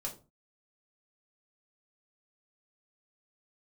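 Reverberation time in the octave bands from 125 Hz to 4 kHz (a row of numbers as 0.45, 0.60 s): 0.50, 0.45, 0.35, 0.30, 0.25, 0.25 s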